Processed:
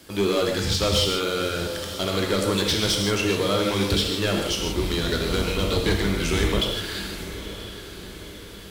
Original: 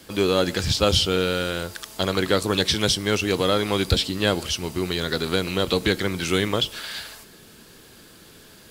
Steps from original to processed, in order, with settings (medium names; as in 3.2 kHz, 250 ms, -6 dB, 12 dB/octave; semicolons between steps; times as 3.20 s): 4.51–6.59 s: octave divider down 2 oct, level +1 dB; overload inside the chain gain 16.5 dB; on a send: echo that smears into a reverb 942 ms, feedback 53%, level -12.5 dB; on the sum: gated-style reverb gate 190 ms flat, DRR 1 dB; trim -2 dB